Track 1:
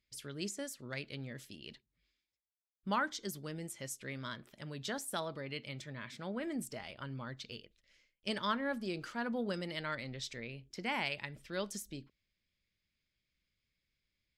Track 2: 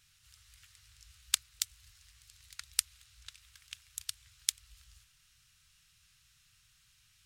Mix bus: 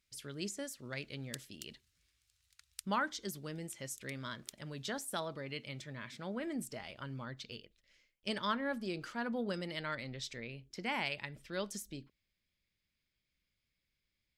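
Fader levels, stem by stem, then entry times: −0.5, −17.0 decibels; 0.00, 0.00 seconds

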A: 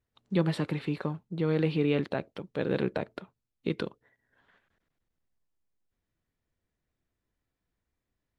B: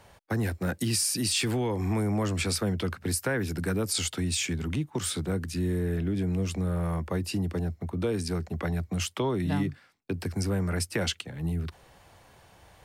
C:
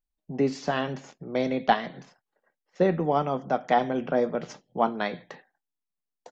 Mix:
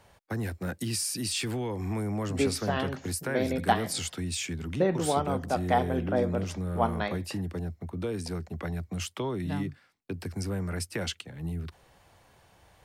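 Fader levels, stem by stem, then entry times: muted, −4.0 dB, −3.0 dB; muted, 0.00 s, 2.00 s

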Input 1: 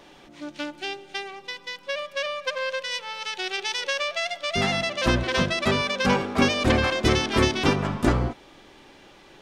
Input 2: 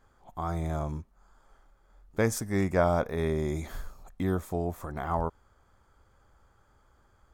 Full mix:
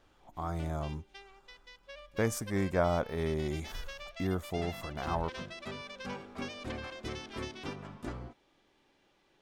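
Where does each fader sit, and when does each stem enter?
−19.5, −4.0 decibels; 0.00, 0.00 seconds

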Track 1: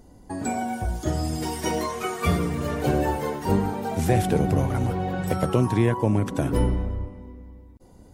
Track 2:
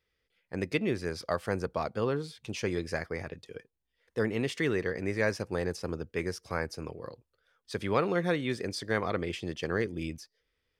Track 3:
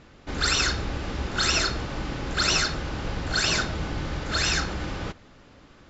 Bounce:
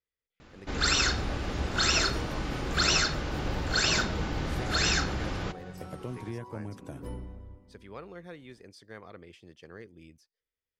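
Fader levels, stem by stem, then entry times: −17.5, −16.5, −2.0 decibels; 0.50, 0.00, 0.40 seconds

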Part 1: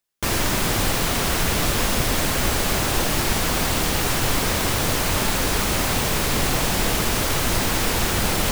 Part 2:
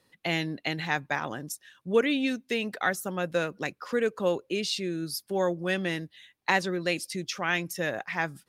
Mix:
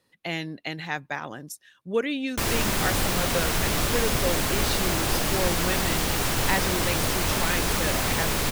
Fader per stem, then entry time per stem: −3.5, −2.0 decibels; 2.15, 0.00 seconds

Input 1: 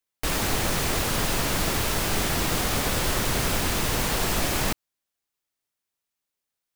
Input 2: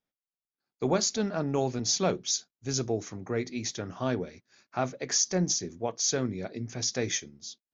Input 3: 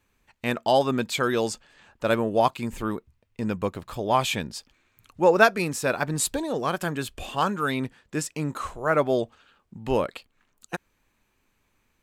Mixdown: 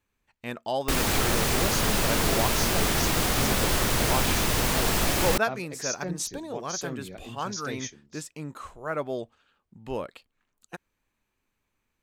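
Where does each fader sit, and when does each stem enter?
+0.5, −6.5, −8.5 decibels; 0.65, 0.70, 0.00 seconds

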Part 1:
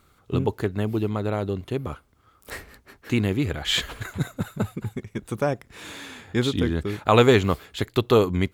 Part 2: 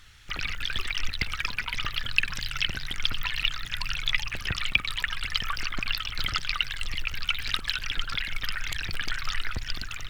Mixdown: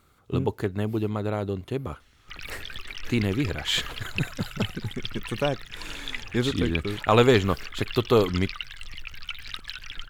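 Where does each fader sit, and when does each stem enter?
−2.0, −8.0 decibels; 0.00, 2.00 seconds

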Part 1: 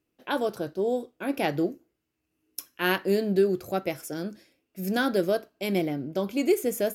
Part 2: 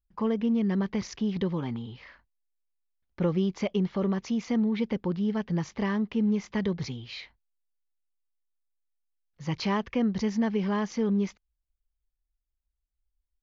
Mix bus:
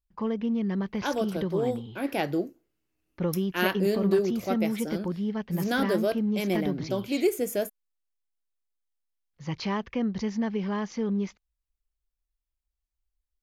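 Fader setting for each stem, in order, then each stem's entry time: −1.5, −2.0 decibels; 0.75, 0.00 seconds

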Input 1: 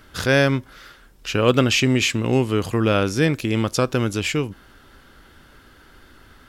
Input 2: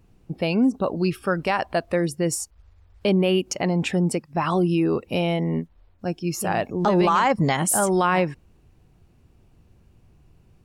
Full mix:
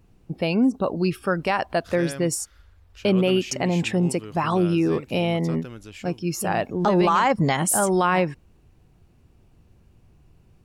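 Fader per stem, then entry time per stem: −18.0, 0.0 decibels; 1.70, 0.00 seconds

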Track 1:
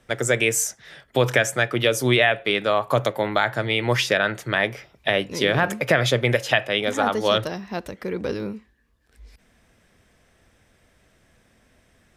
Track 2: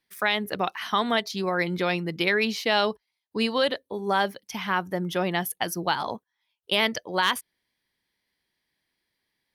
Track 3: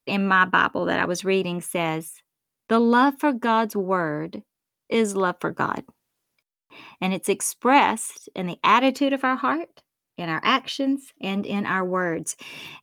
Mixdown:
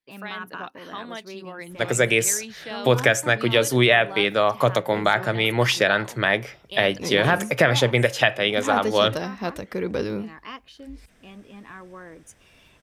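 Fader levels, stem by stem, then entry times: +1.0, −12.0, −18.0 decibels; 1.70, 0.00, 0.00 seconds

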